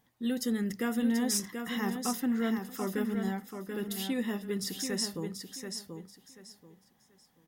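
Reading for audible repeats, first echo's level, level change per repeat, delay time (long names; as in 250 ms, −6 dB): 3, −6.5 dB, −12.5 dB, 734 ms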